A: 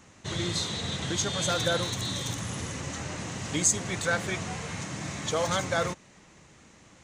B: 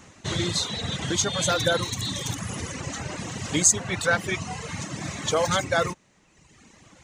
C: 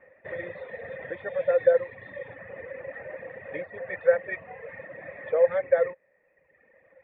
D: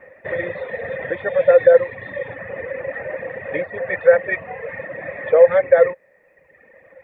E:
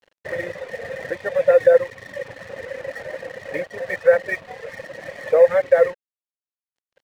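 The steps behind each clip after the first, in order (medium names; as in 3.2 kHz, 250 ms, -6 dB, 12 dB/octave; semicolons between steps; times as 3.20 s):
reverb removal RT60 1.3 s; trim +5.5 dB
cascade formant filter e; high-order bell 1 kHz +10.5 dB 2.5 oct; trim -1.5 dB
loudness maximiser +12 dB; trim -1 dB
crossover distortion -39.5 dBFS; trim -2 dB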